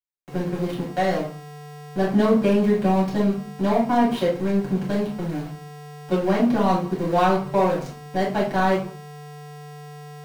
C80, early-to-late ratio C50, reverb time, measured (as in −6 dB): 12.0 dB, 6.0 dB, 0.40 s